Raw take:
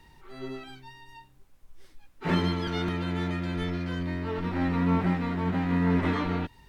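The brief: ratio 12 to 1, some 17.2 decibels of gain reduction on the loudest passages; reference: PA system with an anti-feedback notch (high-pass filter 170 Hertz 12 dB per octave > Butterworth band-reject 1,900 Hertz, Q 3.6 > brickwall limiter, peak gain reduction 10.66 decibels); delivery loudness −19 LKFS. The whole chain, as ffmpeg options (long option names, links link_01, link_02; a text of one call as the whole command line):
ffmpeg -i in.wav -af "acompressor=threshold=-38dB:ratio=12,highpass=170,asuperstop=centerf=1900:order=8:qfactor=3.6,volume=29.5dB,alimiter=limit=-10.5dB:level=0:latency=1" out.wav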